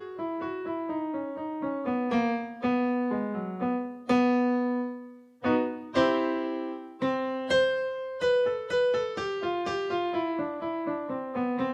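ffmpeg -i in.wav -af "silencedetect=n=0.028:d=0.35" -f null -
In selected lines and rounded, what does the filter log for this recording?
silence_start: 4.95
silence_end: 5.44 | silence_duration: 0.49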